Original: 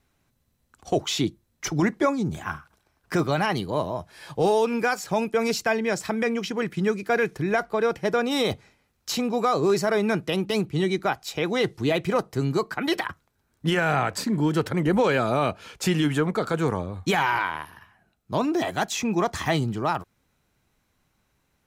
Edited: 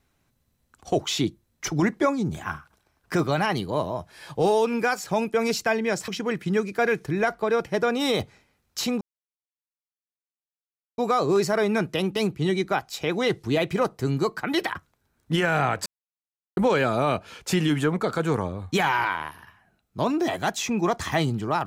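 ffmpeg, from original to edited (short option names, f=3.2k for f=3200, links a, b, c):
-filter_complex "[0:a]asplit=5[a][b][c][d][e];[a]atrim=end=6.082[f];[b]atrim=start=6.388:end=9.32,asetpts=PTS-STARTPTS,afade=t=out:st=2.928:d=0.004:c=hsin,apad=pad_dur=1.97[g];[c]atrim=start=9.32:end=14.2,asetpts=PTS-STARTPTS,afade=t=in:d=0.004:c=hsin,afade=t=out:st=4.876:d=0.004:c=hsin[h];[d]atrim=start=14.2:end=14.91,asetpts=PTS-STARTPTS,volume=0[i];[e]atrim=start=14.91,asetpts=PTS-STARTPTS,afade=t=in:d=0.004:c=hsin[j];[g][h][i][j]concat=n=4:v=0:a=1[k];[f][k]acrossfade=d=0.004:c1=hsin:c2=hsin"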